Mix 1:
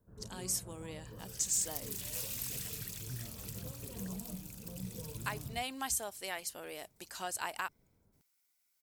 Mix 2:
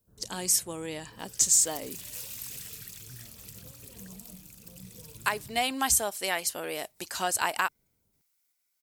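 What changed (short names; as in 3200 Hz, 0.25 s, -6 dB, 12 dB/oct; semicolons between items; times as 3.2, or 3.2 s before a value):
speech +10.5 dB; first sound -5.5 dB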